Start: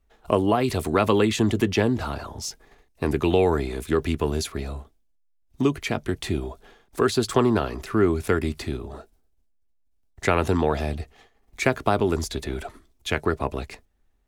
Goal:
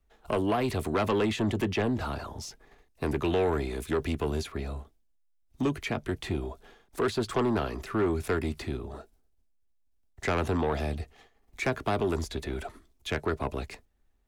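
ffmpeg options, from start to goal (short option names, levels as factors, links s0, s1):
-filter_complex "[0:a]acrossover=split=250|840|3400[s0][s1][s2][s3];[s3]alimiter=level_in=2.11:limit=0.0631:level=0:latency=1:release=413,volume=0.473[s4];[s0][s1][s2][s4]amix=inputs=4:normalize=0,asoftclip=type=tanh:threshold=0.133,volume=0.708"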